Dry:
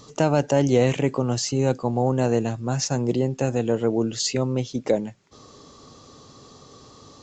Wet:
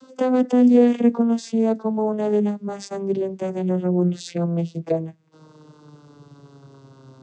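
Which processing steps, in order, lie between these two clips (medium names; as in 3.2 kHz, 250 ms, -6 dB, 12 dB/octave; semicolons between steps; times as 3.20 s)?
vocoder on a note that slides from C4, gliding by -12 st; trim +3 dB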